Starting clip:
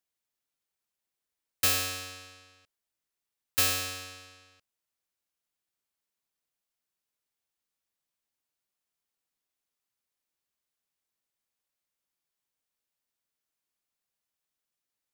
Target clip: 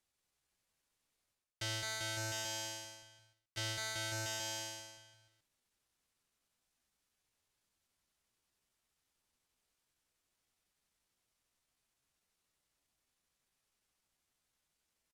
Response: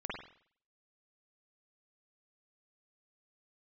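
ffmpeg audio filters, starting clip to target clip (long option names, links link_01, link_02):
-filter_complex "[0:a]acrossover=split=5400[link_01][link_02];[link_02]acompressor=threshold=-40dB:ratio=4:attack=1:release=60[link_03];[link_01][link_03]amix=inputs=2:normalize=0,aecho=1:1:200|380|542|687.8|819:0.631|0.398|0.251|0.158|0.1,areverse,acompressor=threshold=-45dB:ratio=12,areverse,asetrate=52444,aresample=44100,atempo=0.840896,asplit=2[link_04][link_05];[link_05]aeval=exprs='val(0)*gte(abs(val(0)),0.00133)':channel_layout=same,volume=-7.5dB[link_06];[link_04][link_06]amix=inputs=2:normalize=0,lowpass=11000,lowshelf=frequency=130:gain=9.5,volume=4.5dB"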